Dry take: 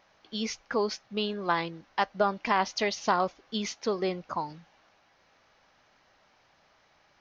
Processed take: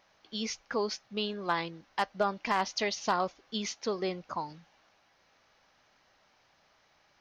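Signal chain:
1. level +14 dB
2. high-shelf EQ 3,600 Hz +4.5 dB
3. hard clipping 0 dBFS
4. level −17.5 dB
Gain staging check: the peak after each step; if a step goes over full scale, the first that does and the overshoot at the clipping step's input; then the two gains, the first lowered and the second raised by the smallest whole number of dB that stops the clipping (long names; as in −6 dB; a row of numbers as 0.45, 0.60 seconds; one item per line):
+2.0, +3.0, 0.0, −17.5 dBFS
step 1, 3.0 dB
step 1 +11 dB, step 4 −14.5 dB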